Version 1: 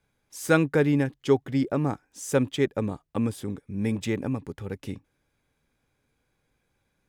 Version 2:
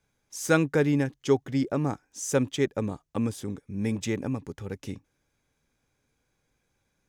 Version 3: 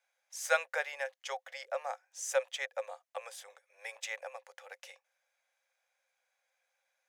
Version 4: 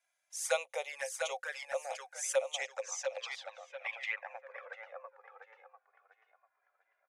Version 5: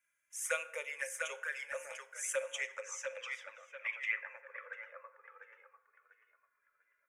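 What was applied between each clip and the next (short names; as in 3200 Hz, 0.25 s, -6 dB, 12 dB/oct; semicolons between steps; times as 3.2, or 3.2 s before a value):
bell 6200 Hz +7.5 dB 0.54 oct; gain -1.5 dB
rippled Chebyshev high-pass 510 Hz, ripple 6 dB
feedback echo 0.695 s, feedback 31%, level -5.5 dB; envelope flanger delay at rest 3 ms, full sweep at -31 dBFS; low-pass sweep 10000 Hz -> 1300 Hz, 2.35–4.82; gain +1 dB
fixed phaser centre 1800 Hz, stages 4; FDN reverb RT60 0.92 s, low-frequency decay 0.95×, high-frequency decay 0.55×, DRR 10.5 dB; gain +2 dB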